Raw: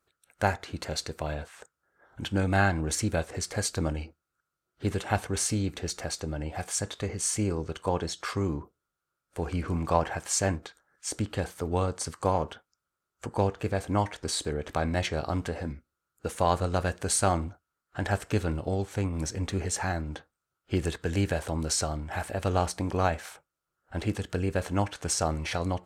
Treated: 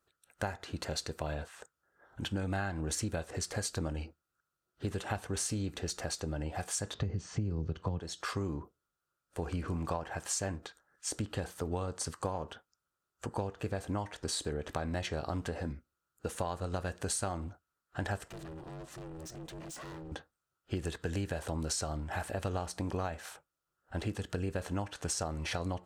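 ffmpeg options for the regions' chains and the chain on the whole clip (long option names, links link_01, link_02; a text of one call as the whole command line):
ffmpeg -i in.wav -filter_complex "[0:a]asettb=1/sr,asplit=3[link_01][link_02][link_03];[link_01]atrim=end=6.944[link_04];[link_02]atrim=start=6.94:end=8,asetpts=PTS-STARTPTS,afade=type=in:duration=0.004:curve=qsin,afade=type=out:start_time=1.056:duration=0.004:curve=qsin,lowpass=frequency=5800:width=0.5412,lowpass=frequency=5800:width=1.3066,equalizer=frequency=110:width=0.35:gain=15,acrossover=split=240|2500[link_05][link_06][link_07];[link_05]acompressor=threshold=-17dB:ratio=4[link_08];[link_06]acompressor=threshold=-27dB:ratio=4[link_09];[link_07]acompressor=threshold=-43dB:ratio=4[link_10];[link_08][link_09][link_10]amix=inputs=3:normalize=0[link_11];[link_03]atrim=start=7.996[link_12];[link_04][link_11]acrossfade=duration=0.004:curve1=hsin:curve2=qsin[link_13];[link_13][link_12]acrossfade=duration=0.004:curve1=qsin:curve2=hsin,asettb=1/sr,asplit=3[link_14][link_15][link_16];[link_14]atrim=end=18.284[link_17];[link_15]atrim=start=18.28:end=20.12,asetpts=PTS-STARTPTS,afade=type=in:duration=0.004:curve=qsin,afade=type=out:start_time=1.836:duration=0.004:curve=qsin,acompressor=threshold=-36dB:ratio=1.5:attack=3.2:release=140:knee=1:detection=peak,asoftclip=type=hard:threshold=-38.5dB,aeval=exprs='val(0)*sin(2*PI*240*n/s)':channel_layout=same[link_18];[link_16]atrim=start=20.116[link_19];[link_17][link_18]acrossfade=duration=0.004:curve1=hsin:curve2=qsin[link_20];[link_20][link_19]acrossfade=duration=0.004:curve1=qsin:curve2=hsin,bandreject=frequency=2200:width=12,acompressor=threshold=-29dB:ratio=10,volume=-2dB" out.wav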